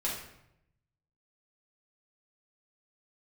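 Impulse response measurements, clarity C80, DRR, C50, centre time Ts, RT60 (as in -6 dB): 6.5 dB, -5.5 dB, 3.5 dB, 45 ms, 0.80 s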